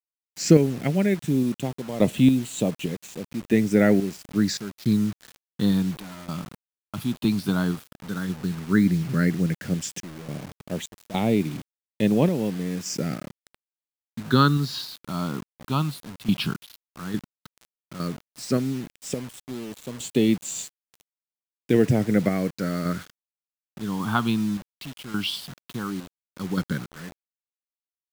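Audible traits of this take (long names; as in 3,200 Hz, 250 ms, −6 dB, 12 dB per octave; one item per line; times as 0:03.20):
phaser sweep stages 6, 0.11 Hz, lowest notch 490–1,400 Hz
sample-and-hold tremolo, depth 90%
a quantiser's noise floor 8 bits, dither none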